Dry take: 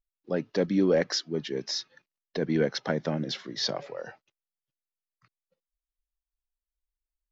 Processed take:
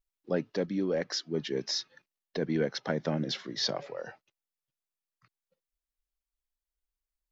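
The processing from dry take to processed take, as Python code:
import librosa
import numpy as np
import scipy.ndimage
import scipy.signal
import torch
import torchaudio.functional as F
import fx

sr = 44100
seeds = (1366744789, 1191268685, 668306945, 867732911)

y = fx.rider(x, sr, range_db=10, speed_s=0.5)
y = F.gain(torch.from_numpy(y), -3.0).numpy()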